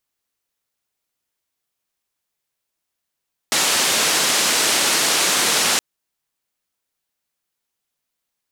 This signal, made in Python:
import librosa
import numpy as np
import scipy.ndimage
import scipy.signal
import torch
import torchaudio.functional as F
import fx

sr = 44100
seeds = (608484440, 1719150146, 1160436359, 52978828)

y = fx.band_noise(sr, seeds[0], length_s=2.27, low_hz=210.0, high_hz=8200.0, level_db=-18.0)